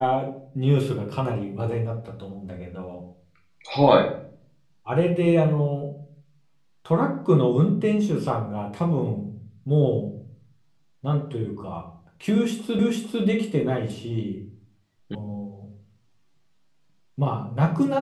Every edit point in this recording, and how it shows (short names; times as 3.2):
12.79 repeat of the last 0.45 s
15.15 sound cut off